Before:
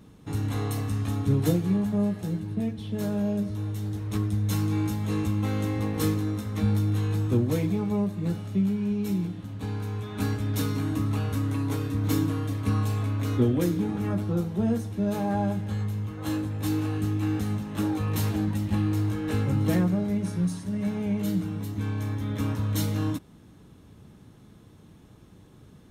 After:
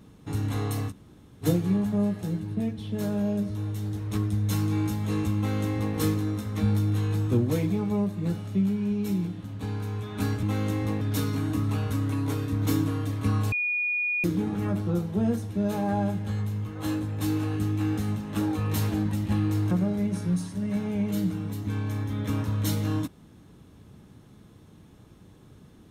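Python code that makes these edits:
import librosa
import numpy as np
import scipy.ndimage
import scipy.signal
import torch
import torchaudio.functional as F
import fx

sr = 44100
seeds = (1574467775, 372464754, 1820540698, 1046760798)

y = fx.edit(x, sr, fx.room_tone_fill(start_s=0.9, length_s=0.54, crossfade_s=0.06),
    fx.duplicate(start_s=5.37, length_s=0.58, to_s=10.43),
    fx.bleep(start_s=12.94, length_s=0.72, hz=2450.0, db=-24.0),
    fx.cut(start_s=19.13, length_s=0.69), tone=tone)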